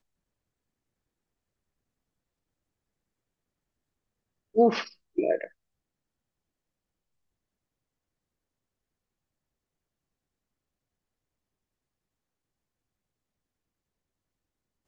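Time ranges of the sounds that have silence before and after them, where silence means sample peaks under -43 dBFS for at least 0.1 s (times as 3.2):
4.55–4.92
5.18–5.47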